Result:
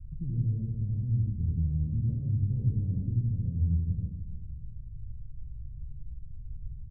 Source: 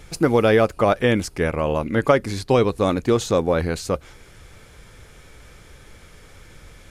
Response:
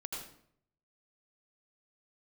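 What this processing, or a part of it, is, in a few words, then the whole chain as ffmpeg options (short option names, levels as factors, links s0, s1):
club heard from the street: -filter_complex "[0:a]alimiter=limit=0.211:level=0:latency=1:release=198,lowpass=f=130:w=0.5412,lowpass=f=130:w=1.3066[s0];[1:a]atrim=start_sample=2205[s1];[s0][s1]afir=irnorm=-1:irlink=0,asettb=1/sr,asplit=3[s2][s3][s4];[s2]atrim=end=2.064[s5];[s3]atrim=start=2.06:end=3.12,asetpts=PTS-STARTPTS,afade=t=in:d=0.004:c=qsin,afade=t=out:st=1.056:d=0.004:c=qsin,equalizer=f=1200:w=0.65:g=12[s6];[s4]atrim=start=3.116[s7];[s5][s6]acrossfade=d=0.004:c1=hsin:c2=qsin[s8];[s8][s7]acrossfade=d=0.004:c1=qsin:c2=hsin,aecho=1:1:303|606|909|1212:0.251|0.0879|0.0308|0.0108,volume=2.11"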